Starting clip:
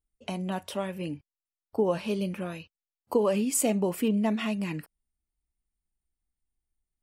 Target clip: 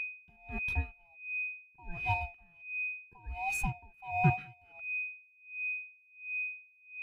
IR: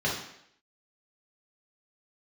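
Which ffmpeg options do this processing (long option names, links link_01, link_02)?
-af "afftfilt=real='real(if(lt(b,1008),b+24*(1-2*mod(floor(b/24),2)),b),0)':imag='imag(if(lt(b,1008),b+24*(1-2*mod(floor(b/24),2)),b),0)':win_size=2048:overlap=0.75,aeval=exprs='sgn(val(0))*max(abs(val(0))-0.00562,0)':channel_layout=same,bass=frequency=250:gain=14,treble=frequency=4000:gain=-9,aeval=exprs='val(0)+0.0447*sin(2*PI*2500*n/s)':channel_layout=same,adynamicequalizer=threshold=0.00224:dfrequency=8200:dqfactor=1.6:tfrequency=8200:tqfactor=1.6:attack=5:release=100:ratio=0.375:range=2:mode=cutabove:tftype=bell,aeval=exprs='val(0)*pow(10,-31*(0.5-0.5*cos(2*PI*1.4*n/s))/20)':channel_layout=same,volume=-4dB"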